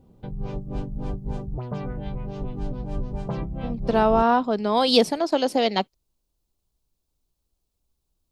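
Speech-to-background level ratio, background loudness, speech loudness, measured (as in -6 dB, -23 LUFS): 11.5 dB, -33.0 LUFS, -21.5 LUFS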